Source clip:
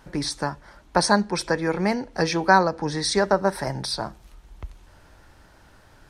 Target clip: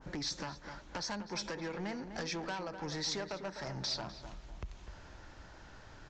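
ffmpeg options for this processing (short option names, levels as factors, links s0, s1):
-filter_complex "[0:a]acompressor=threshold=0.0224:ratio=5,aresample=16000,asoftclip=type=tanh:threshold=0.0224,aresample=44100,asplit=2[s0][s1];[s1]adelay=251,lowpass=f=1700:p=1,volume=0.376,asplit=2[s2][s3];[s3]adelay=251,lowpass=f=1700:p=1,volume=0.38,asplit=2[s4][s5];[s5]adelay=251,lowpass=f=1700:p=1,volume=0.38,asplit=2[s6][s7];[s7]adelay=251,lowpass=f=1700:p=1,volume=0.38[s8];[s0][s2][s4][s6][s8]amix=inputs=5:normalize=0,adynamicequalizer=threshold=0.00178:dfrequency=1500:dqfactor=0.7:tfrequency=1500:tqfactor=0.7:attack=5:release=100:ratio=0.375:range=2:mode=boostabove:tftype=highshelf,volume=0.841"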